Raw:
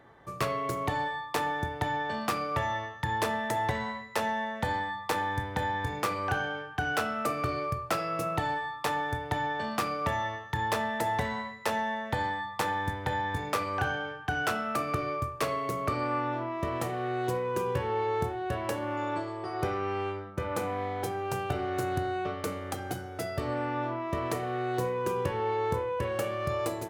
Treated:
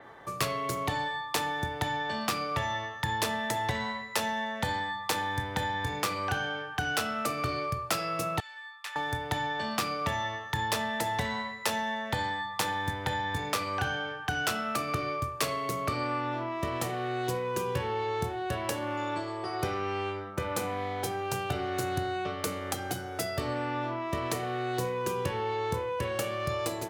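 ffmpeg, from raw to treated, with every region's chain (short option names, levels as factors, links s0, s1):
-filter_complex "[0:a]asettb=1/sr,asplit=3[s0][s1][s2];[s0]atrim=end=8.404[s3];[s1]atrim=start=8.4:end=8.96,asetpts=PTS-STARTPTS,afade=t=in:d=0.004:c=qsin,afade=t=out:st=0.556:d=0.004:c=qsin,bandpass=f=1900:t=q:w=1.1,aderivative[s4];[s2]atrim=start=8.956[s5];[s3][s4]acrossfade=d=0.004:c1=hsin:c2=qsin[s6];[s6][s5]acrossfade=d=0.004:c1=qsin:c2=hsin,lowshelf=f=250:g=-10,acrossover=split=240|3000[s7][s8][s9];[s8]acompressor=threshold=0.00501:ratio=2[s10];[s7][s10][s9]amix=inputs=3:normalize=0,adynamicequalizer=threshold=0.00178:dfrequency=5900:dqfactor=0.7:tfrequency=5900:tqfactor=0.7:attack=5:release=100:ratio=0.375:range=3:mode=cutabove:tftype=highshelf,volume=2.51"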